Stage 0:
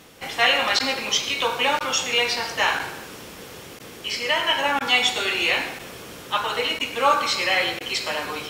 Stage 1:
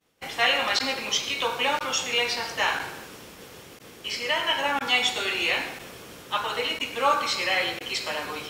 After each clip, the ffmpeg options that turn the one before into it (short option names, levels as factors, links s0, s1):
-af "agate=range=0.0224:threshold=0.0141:ratio=3:detection=peak,volume=0.668"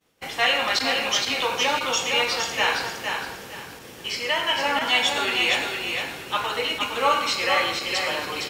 -filter_complex "[0:a]asplit=2[s0][s1];[s1]asoftclip=type=tanh:threshold=0.126,volume=0.501[s2];[s0][s2]amix=inputs=2:normalize=0,aecho=1:1:462|924|1386|1848:0.562|0.152|0.041|0.0111,volume=0.841"